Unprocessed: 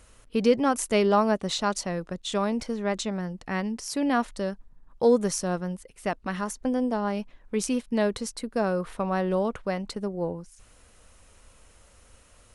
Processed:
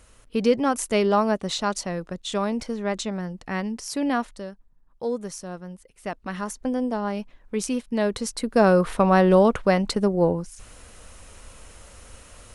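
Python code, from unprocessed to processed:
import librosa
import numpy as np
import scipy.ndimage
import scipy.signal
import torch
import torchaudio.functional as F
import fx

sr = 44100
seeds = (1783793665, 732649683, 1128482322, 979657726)

y = fx.gain(x, sr, db=fx.line((4.1, 1.0), (4.52, -7.5), (5.58, -7.5), (6.47, 0.5), (7.98, 0.5), (8.69, 9.5)))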